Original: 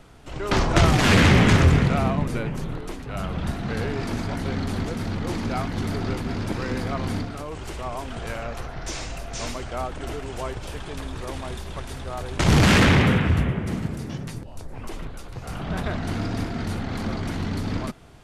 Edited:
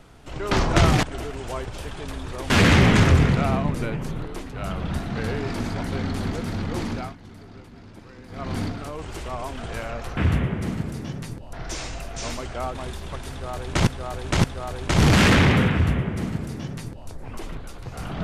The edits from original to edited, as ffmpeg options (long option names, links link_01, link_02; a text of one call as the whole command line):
ffmpeg -i in.wav -filter_complex "[0:a]asplit=10[link_01][link_02][link_03][link_04][link_05][link_06][link_07][link_08][link_09][link_10];[link_01]atrim=end=1.032[link_11];[link_02]atrim=start=9.918:end=11.392[link_12];[link_03]atrim=start=1.028:end=5.69,asetpts=PTS-STARTPTS,afade=type=out:start_time=4.382:duration=0.28:silence=0.141254[link_13];[link_04]atrim=start=5.69:end=6.81,asetpts=PTS-STARTPTS,volume=-17dB[link_14];[link_05]atrim=start=6.81:end=8.702,asetpts=PTS-STARTPTS,afade=type=in:duration=0.28:silence=0.141254[link_15];[link_06]atrim=start=13.218:end=14.582[link_16];[link_07]atrim=start=8.698:end=9.922[link_17];[link_08]atrim=start=11.388:end=12.512[link_18];[link_09]atrim=start=11.938:end=12.512[link_19];[link_10]atrim=start=11.938[link_20];[link_11][link_12]acrossfade=duration=0.004:curve1=hsin:curve2=hsin[link_21];[link_13][link_14][link_15]concat=n=3:v=0:a=1[link_22];[link_21][link_22]acrossfade=duration=0.004:curve1=hsin:curve2=hsin[link_23];[link_23][link_16]acrossfade=duration=0.004:curve1=hsin:curve2=hsin[link_24];[link_24][link_17]acrossfade=duration=0.004:curve1=hsin:curve2=hsin[link_25];[link_25][link_18]acrossfade=duration=0.004:curve1=hsin:curve2=hsin[link_26];[link_26][link_19]acrossfade=duration=0.004:curve1=hsin:curve2=hsin[link_27];[link_27][link_20]acrossfade=duration=0.004:curve1=hsin:curve2=hsin" out.wav